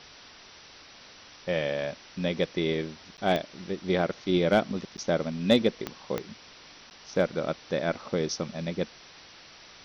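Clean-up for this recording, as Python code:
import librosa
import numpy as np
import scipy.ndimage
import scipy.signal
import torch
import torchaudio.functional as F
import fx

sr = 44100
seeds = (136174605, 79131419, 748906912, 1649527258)

y = fx.fix_declip(x, sr, threshold_db=-11.0)
y = fx.fix_declick_ar(y, sr, threshold=10.0)
y = fx.fix_interpolate(y, sr, at_s=(3.17, 4.97, 6.9), length_ms=9.8)
y = fx.noise_reduce(y, sr, print_start_s=6.54, print_end_s=7.04, reduce_db=23.0)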